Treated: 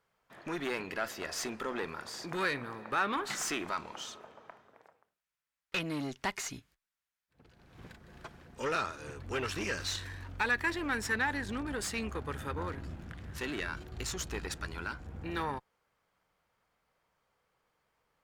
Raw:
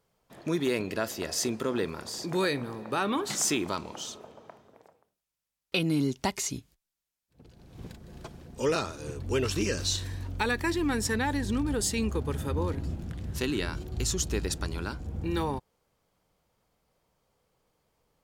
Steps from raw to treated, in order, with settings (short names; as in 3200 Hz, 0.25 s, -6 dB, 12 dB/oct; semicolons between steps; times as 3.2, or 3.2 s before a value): tube stage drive 24 dB, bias 0.4; bell 1600 Hz +12.5 dB 2 oct; gain -7.5 dB